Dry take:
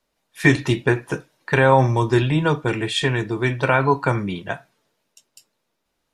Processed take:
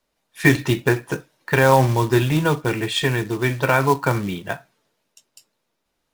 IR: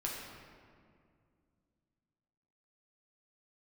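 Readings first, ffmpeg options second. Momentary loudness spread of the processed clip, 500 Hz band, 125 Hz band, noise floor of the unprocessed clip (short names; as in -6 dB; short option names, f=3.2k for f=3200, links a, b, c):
13 LU, 0.0 dB, 0.0 dB, -75 dBFS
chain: -af "acrusher=bits=4:mode=log:mix=0:aa=0.000001"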